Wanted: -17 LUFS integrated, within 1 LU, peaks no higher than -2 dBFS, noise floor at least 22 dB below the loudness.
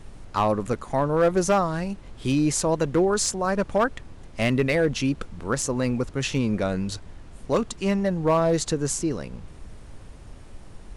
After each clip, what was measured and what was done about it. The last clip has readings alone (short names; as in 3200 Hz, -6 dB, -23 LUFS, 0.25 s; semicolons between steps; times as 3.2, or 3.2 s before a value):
clipped 0.7%; flat tops at -14.0 dBFS; noise floor -44 dBFS; noise floor target -47 dBFS; loudness -24.5 LUFS; peak -14.0 dBFS; loudness target -17.0 LUFS
-> clip repair -14 dBFS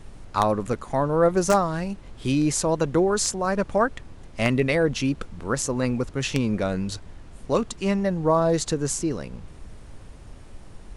clipped 0.0%; noise floor -44 dBFS; noise floor target -46 dBFS
-> noise print and reduce 6 dB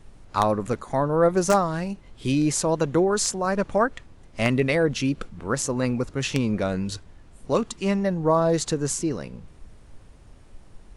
noise floor -50 dBFS; loudness -24.0 LUFS; peak -5.0 dBFS; loudness target -17.0 LUFS
-> gain +7 dB; limiter -2 dBFS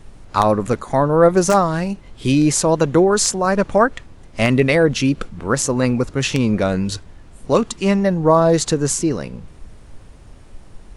loudness -17.5 LUFS; peak -2.0 dBFS; noise floor -43 dBFS